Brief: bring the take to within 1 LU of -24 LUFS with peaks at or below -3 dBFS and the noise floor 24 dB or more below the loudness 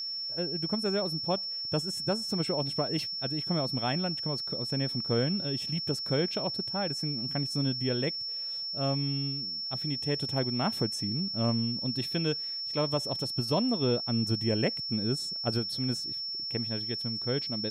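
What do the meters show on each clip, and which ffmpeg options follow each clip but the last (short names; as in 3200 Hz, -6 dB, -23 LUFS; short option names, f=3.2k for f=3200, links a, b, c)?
steady tone 5400 Hz; tone level -33 dBFS; loudness -30.0 LUFS; peak -15.0 dBFS; loudness target -24.0 LUFS
-> -af "bandreject=f=5.4k:w=30"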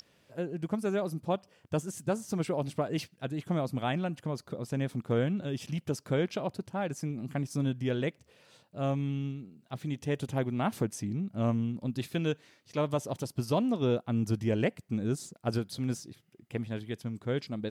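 steady tone none; loudness -33.0 LUFS; peak -16.5 dBFS; loudness target -24.0 LUFS
-> -af "volume=9dB"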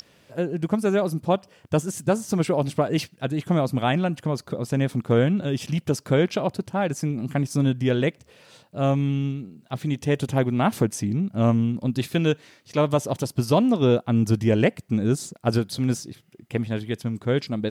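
loudness -24.0 LUFS; peak -7.5 dBFS; noise floor -58 dBFS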